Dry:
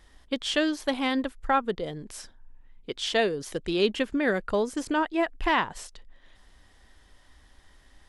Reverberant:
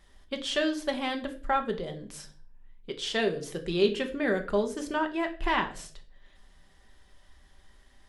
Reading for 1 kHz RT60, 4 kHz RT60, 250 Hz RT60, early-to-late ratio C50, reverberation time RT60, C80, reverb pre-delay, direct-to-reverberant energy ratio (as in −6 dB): 0.40 s, 0.40 s, 0.60 s, 14.0 dB, 0.50 s, 17.5 dB, 5 ms, 4.5 dB